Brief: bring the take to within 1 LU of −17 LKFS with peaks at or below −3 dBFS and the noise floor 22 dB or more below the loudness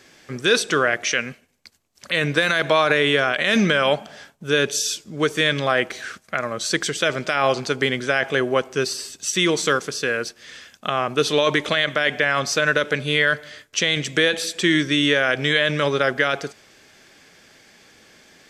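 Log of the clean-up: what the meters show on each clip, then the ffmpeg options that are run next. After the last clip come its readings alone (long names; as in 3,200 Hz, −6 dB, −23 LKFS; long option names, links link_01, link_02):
integrated loudness −20.5 LKFS; sample peak −4.0 dBFS; target loudness −17.0 LKFS
→ -af "volume=3.5dB,alimiter=limit=-3dB:level=0:latency=1"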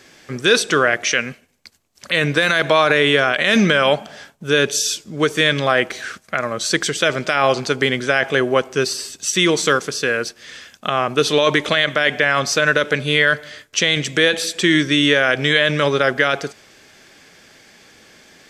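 integrated loudness −17.0 LKFS; sample peak −3.0 dBFS; background noise floor −53 dBFS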